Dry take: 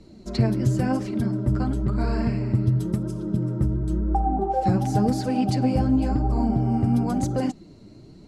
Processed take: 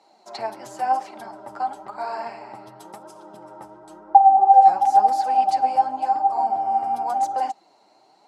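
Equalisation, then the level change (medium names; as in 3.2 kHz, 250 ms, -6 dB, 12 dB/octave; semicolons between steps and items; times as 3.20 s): resonant high-pass 810 Hz, resonance Q 8.4; -2.5 dB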